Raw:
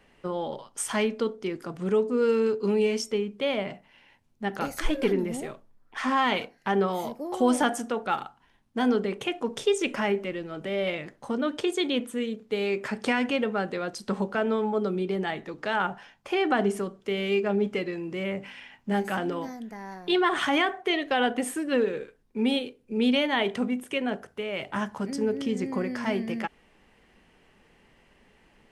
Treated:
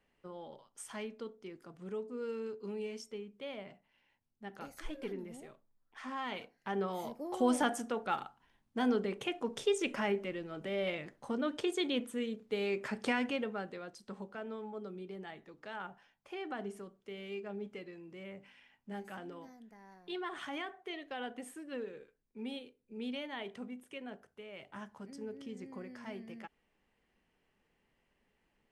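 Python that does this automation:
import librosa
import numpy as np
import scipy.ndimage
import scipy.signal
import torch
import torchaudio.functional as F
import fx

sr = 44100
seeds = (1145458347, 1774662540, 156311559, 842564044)

y = fx.gain(x, sr, db=fx.line((6.13, -16.5), (7.25, -7.0), (13.16, -7.0), (14.06, -17.0)))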